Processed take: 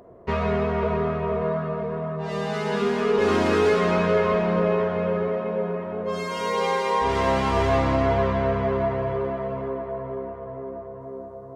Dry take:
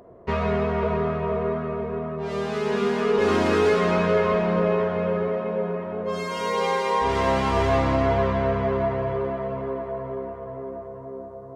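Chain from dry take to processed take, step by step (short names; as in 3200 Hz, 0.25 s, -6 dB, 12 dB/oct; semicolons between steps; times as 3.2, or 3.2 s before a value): 1.41–2.82 comb 6.1 ms, depth 58%; 9.68–11.01 air absorption 94 m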